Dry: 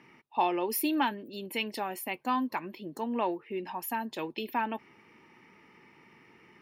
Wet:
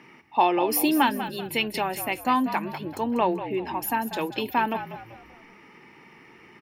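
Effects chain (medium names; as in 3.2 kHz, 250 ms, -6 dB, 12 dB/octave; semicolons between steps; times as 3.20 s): bass shelf 68 Hz -9.5 dB; on a send: frequency-shifting echo 192 ms, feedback 39%, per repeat -53 Hz, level -11 dB; on the sum: trim +7 dB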